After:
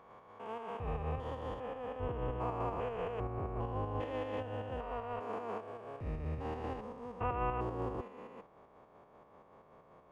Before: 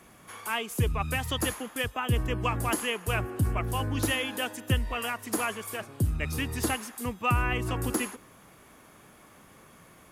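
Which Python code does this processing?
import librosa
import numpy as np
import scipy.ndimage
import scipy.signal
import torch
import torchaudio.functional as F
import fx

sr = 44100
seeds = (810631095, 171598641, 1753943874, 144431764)

y = fx.spec_steps(x, sr, hold_ms=400)
y = fx.band_shelf(y, sr, hz=670.0, db=10.5, octaves=1.7)
y = fx.volume_shaper(y, sr, bpm=156, per_beat=2, depth_db=-5, release_ms=102.0, shape='slow start')
y = fx.spacing_loss(y, sr, db_at_10k=31)
y = y * 10.0 ** (-6.0 / 20.0)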